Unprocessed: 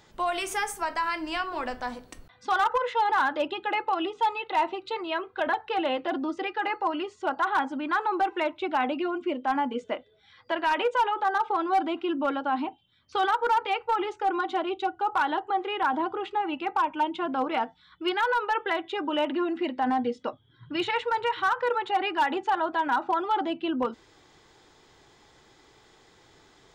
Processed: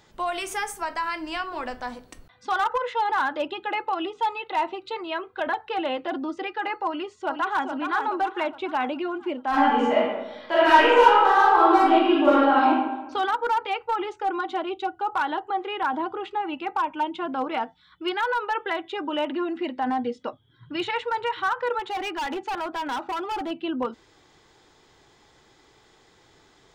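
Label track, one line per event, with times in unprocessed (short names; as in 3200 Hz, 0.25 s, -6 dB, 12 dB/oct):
6.870000	7.660000	echo throw 0.42 s, feedback 50%, level -6 dB
9.490000	12.670000	reverb throw, RT60 1.1 s, DRR -9.5 dB
21.790000	23.510000	overloaded stage gain 26 dB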